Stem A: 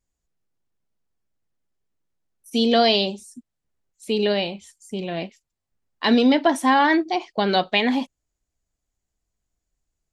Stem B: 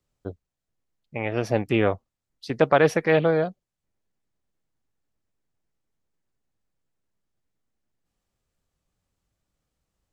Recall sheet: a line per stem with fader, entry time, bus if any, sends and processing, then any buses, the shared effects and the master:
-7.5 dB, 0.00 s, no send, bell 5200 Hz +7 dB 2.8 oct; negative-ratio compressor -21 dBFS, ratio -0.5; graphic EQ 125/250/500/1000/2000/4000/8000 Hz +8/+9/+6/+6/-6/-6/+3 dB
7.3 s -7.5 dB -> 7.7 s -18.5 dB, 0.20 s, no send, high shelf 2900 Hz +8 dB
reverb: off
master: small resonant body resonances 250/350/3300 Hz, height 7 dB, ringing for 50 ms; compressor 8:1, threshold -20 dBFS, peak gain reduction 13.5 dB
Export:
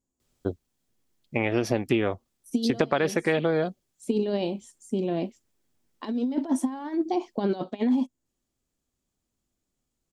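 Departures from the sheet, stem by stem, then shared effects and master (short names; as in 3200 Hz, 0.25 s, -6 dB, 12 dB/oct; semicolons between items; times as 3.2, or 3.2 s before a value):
stem A -7.5 dB -> -14.5 dB; stem B -7.5 dB -> +3.5 dB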